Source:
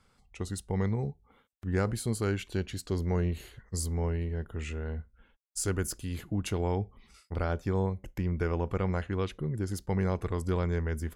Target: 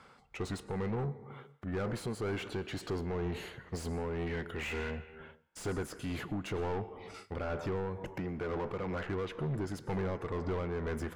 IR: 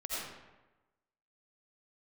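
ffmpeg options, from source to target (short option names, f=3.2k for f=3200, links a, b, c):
-filter_complex "[0:a]asettb=1/sr,asplit=3[a][b][c];[a]atrim=end=8.184[d];[b]atrim=start=8.18:end=9.08,asetpts=PTS-STARTPTS,afade=t=in:d=0.004:c=qsin,afade=t=out:st=0.896:d=0.004:c=qsin,aeval=exprs='if(lt(val(0),0),0.251*val(0),val(0))':c=same[e];[c]atrim=start=9.076[f];[d][e]acrossfade=d=0.004:c1=hsin:c2=qsin[g];[g][f]acrossfade=d=0.004:c1=qsin:c2=hsin,equalizer=f=140:w=7.4:g=5.5,acompressor=threshold=-31dB:ratio=2.5,asplit=3[h][i][j];[h]afade=t=out:st=4.26:d=0.02[k];[i]highshelf=f=1.6k:t=q:w=1.5:g=9.5,afade=t=in:st=4.26:d=0.02,afade=t=out:st=4.9:d=0.02[l];[j]afade=t=in:st=4.9:d=0.02[m];[k][l][m]amix=inputs=3:normalize=0,asettb=1/sr,asplit=3[n][o][p];[n]atrim=end=10.334[q];[o]atrim=start=10.33:end=10.76,asetpts=PTS-STARTPTS,afade=t=in:d=0.004:c=qsin,afade=t=out:st=0.426:d=0.004:c=qsin,lowpass=f=4.4k:w=0.5412,lowpass=f=4.4k:w=1.3066[r];[p]atrim=start=10.756[s];[q][r]acrossfade=d=0.004:c1=hsin:c2=qsin[t];[t][s]acrossfade=d=0.004:c1=qsin:c2=hsin,asplit=2[u][v];[1:a]atrim=start_sample=2205,afade=t=out:st=0.38:d=0.01,atrim=end_sample=17199,asetrate=31311,aresample=44100[w];[v][w]afir=irnorm=-1:irlink=0,volume=-23dB[x];[u][x]amix=inputs=2:normalize=0,tremolo=f=2.1:d=0.46,asplit=2[y][z];[z]highpass=f=720:p=1,volume=29dB,asoftclip=type=tanh:threshold=-20.5dB[aa];[y][aa]amix=inputs=2:normalize=0,lowpass=f=1.2k:p=1,volume=-6dB,volume=-5.5dB"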